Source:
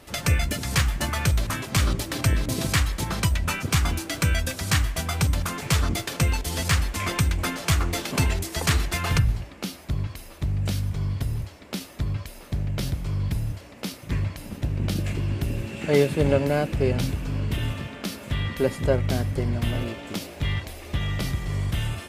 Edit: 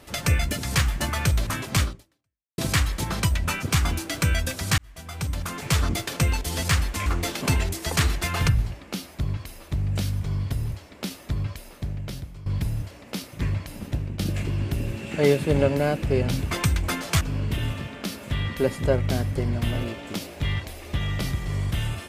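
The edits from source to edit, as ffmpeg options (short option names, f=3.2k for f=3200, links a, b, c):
-filter_complex "[0:a]asplit=8[a][b][c][d][e][f][g][h];[a]atrim=end=2.58,asetpts=PTS-STARTPTS,afade=t=out:st=1.82:d=0.76:c=exp[i];[b]atrim=start=2.58:end=4.78,asetpts=PTS-STARTPTS,afade=t=in:d=0.004:c=hsin,afade=t=out:st=2.196:d=0.004:c=hsin[j];[c]atrim=start=4.78:end=7.062,asetpts=PTS-STARTPTS,afade=t=in:d=0.98[k];[d]atrim=start=7.758:end=13.16,asetpts=PTS-STARTPTS,afade=t=out:st=4.472:d=0.93:silence=0.177828[l];[e]atrim=start=13.16:end=14.89,asetpts=PTS-STARTPTS,afade=t=in:d=0.004:c=hsin:silence=0.177828,afade=t=out:st=1.48:d=0.25:silence=0.266073[m];[f]atrim=start=14.89:end=17.212,asetpts=PTS-STARTPTS,afade=t=in:d=0.004:c=hsin:silence=0.266073[n];[g]atrim=start=7.058:end=7.762[o];[h]atrim=start=17.208[p];[i][j][k]concat=n=3:v=0:a=1[q];[l][m][n]concat=n=3:v=0:a=1[r];[q][r]acrossfade=d=0.004:c1=hsin:c2=hsin[s];[s][o]acrossfade=d=0.004:c1=hsin:c2=hsin[t];[t][p]acrossfade=d=0.004:c1=hsin:c2=hsin"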